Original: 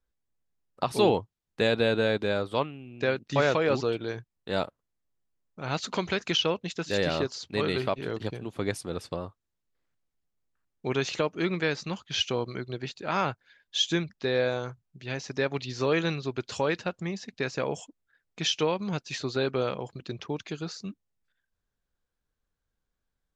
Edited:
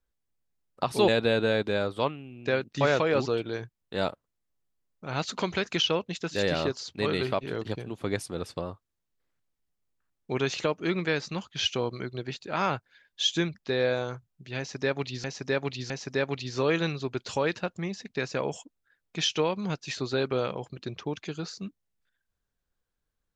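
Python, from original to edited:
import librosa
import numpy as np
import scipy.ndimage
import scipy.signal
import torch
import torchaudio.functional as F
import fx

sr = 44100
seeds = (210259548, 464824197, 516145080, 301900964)

y = fx.edit(x, sr, fx.cut(start_s=1.08, length_s=0.55),
    fx.repeat(start_s=15.13, length_s=0.66, count=3), tone=tone)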